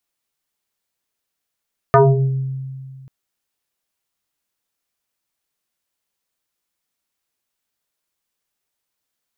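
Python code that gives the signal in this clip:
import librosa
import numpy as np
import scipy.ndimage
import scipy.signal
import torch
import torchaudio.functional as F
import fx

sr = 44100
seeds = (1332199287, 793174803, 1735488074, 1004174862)

y = fx.fm2(sr, length_s=1.14, level_db=-6.5, carrier_hz=133.0, ratio=2.05, index=5.0, index_s=0.77, decay_s=2.15, shape='exponential')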